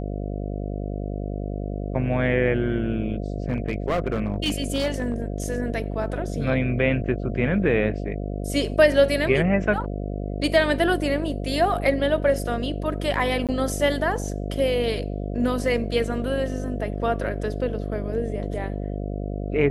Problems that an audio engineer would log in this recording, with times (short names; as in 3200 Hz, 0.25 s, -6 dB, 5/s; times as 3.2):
buzz 50 Hz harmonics 14 -29 dBFS
3.49–5.22 clipped -18.5 dBFS
13.47–13.49 gap 17 ms